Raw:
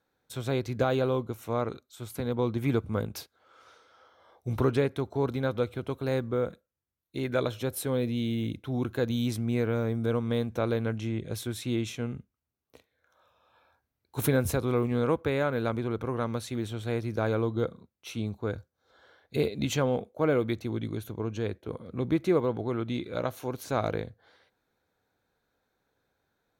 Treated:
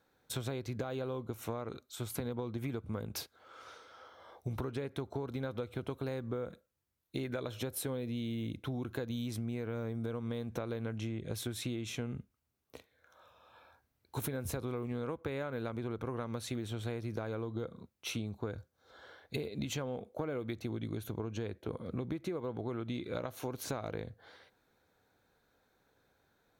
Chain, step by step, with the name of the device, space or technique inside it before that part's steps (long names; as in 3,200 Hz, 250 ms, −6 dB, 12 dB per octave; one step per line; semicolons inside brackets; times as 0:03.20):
serial compression, leveller first (downward compressor 3 to 1, threshold −29 dBFS, peak gain reduction 7.5 dB; downward compressor 6 to 1, threshold −39 dBFS, peak gain reduction 12.5 dB)
level +4 dB